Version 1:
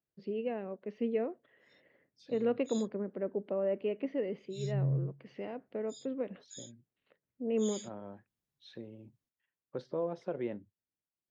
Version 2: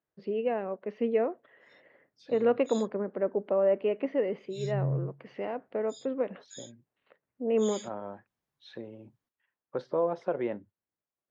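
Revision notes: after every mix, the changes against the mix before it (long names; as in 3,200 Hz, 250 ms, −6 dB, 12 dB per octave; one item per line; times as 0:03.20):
master: add parametric band 1,000 Hz +10.5 dB 2.6 octaves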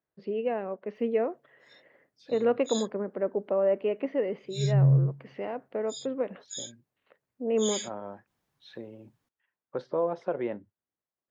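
background +9.5 dB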